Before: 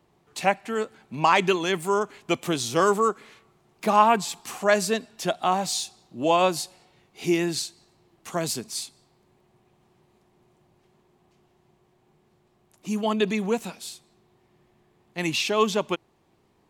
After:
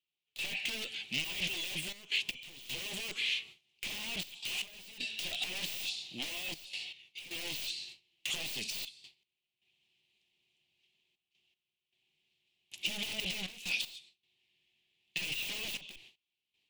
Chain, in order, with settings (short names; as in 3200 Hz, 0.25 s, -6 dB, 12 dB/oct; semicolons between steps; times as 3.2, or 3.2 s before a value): gate with hold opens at -49 dBFS; in parallel at -8 dB: sample gate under -23.5 dBFS; on the sum: bell 3100 Hz +12.5 dB 1.8 oct; tube stage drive 19 dB, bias 0.45; limiter -20.5 dBFS, peak gain reduction 4.5 dB; AGC gain up to 3 dB; wavefolder -29.5 dBFS; resonant high shelf 1900 Hz +12.5 dB, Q 3; de-esser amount 50%; step gate "..xxxxxxxx.x" 78 bpm -12 dB; gain -8 dB